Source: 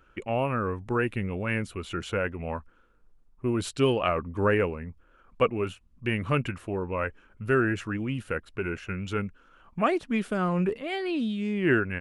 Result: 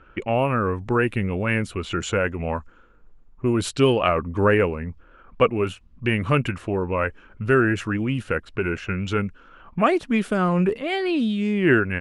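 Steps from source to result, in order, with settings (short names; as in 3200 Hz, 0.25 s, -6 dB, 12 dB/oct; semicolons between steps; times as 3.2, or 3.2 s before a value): 1.92–3.53 bell 7000 Hz +12.5 dB 0.23 oct; in parallel at -3 dB: compressor, threshold -37 dBFS, peak gain reduction 18 dB; on the sum: low-pass opened by the level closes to 2700 Hz, open at -23.5 dBFS; gain +4.5 dB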